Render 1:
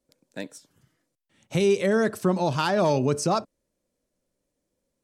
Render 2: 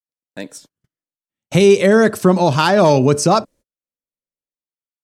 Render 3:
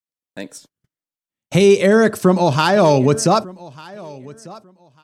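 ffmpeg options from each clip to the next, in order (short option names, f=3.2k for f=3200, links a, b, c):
-af "dynaudnorm=f=110:g=11:m=15.5dB,agate=range=-38dB:threshold=-42dB:ratio=16:detection=peak"
-af "aecho=1:1:1196|2392:0.0841|0.016,volume=-1dB"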